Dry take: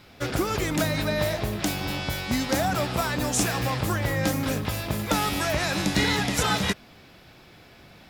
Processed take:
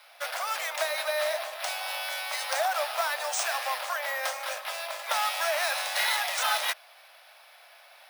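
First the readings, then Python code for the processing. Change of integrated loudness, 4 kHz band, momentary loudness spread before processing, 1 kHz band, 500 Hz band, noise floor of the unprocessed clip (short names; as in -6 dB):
-3.0 dB, -1.5 dB, 5 LU, -0.5 dB, -4.0 dB, -51 dBFS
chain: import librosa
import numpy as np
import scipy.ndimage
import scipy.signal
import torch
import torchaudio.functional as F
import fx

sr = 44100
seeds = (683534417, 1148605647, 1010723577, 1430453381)

y = np.minimum(x, 2.0 * 10.0 ** (-20.0 / 20.0) - x)
y = scipy.signal.sosfilt(scipy.signal.butter(12, 570.0, 'highpass', fs=sr, output='sos'), y)
y = np.repeat(scipy.signal.resample_poly(y, 1, 3), 3)[:len(y)]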